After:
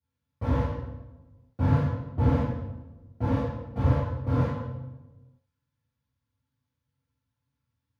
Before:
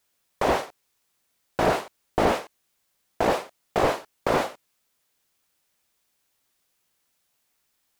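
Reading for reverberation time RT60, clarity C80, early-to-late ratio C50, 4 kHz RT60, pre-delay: 1.1 s, 1.5 dB, -1.0 dB, 0.75 s, 3 ms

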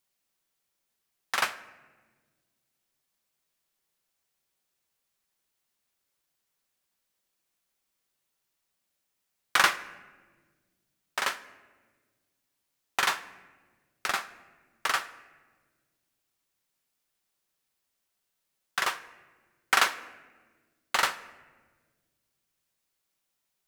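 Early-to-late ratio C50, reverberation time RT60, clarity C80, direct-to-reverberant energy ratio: 15.5 dB, 1.5 s, 17.0 dB, 11.0 dB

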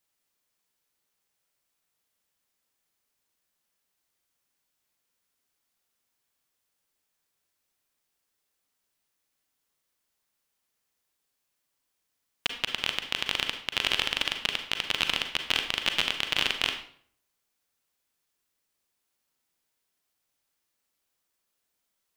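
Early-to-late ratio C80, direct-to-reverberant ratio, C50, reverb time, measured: 11.0 dB, 5.5 dB, 8.0 dB, 0.55 s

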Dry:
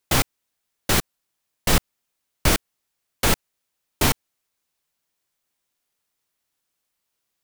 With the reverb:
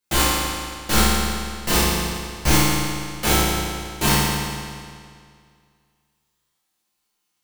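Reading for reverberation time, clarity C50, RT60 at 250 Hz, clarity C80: 2.1 s, -3.5 dB, 2.1 s, -1.0 dB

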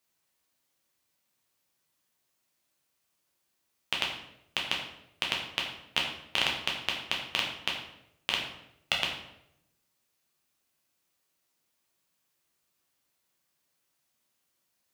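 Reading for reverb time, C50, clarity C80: 0.80 s, 5.0 dB, 7.0 dB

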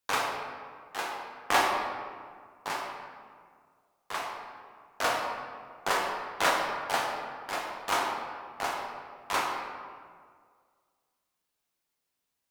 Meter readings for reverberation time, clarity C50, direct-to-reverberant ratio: 1.9 s, 2.0 dB, -1.0 dB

